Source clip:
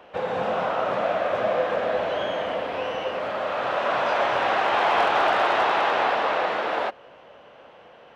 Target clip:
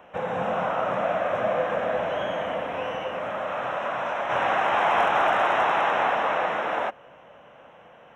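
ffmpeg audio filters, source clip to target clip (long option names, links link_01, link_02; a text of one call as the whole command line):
ffmpeg -i in.wav -filter_complex "[0:a]equalizer=frequency=160:width_type=o:width=0.67:gain=4,equalizer=frequency=400:width_type=o:width=0.67:gain=-5,equalizer=frequency=4000:width_type=o:width=0.67:gain=-8,asplit=3[link_01][link_02][link_03];[link_01]afade=type=out:start_time=2.96:duration=0.02[link_04];[link_02]acompressor=threshold=-25dB:ratio=6,afade=type=in:start_time=2.96:duration=0.02,afade=type=out:start_time=4.29:duration=0.02[link_05];[link_03]afade=type=in:start_time=4.29:duration=0.02[link_06];[link_04][link_05][link_06]amix=inputs=3:normalize=0,asuperstop=centerf=4600:order=4:qfactor=3.1" out.wav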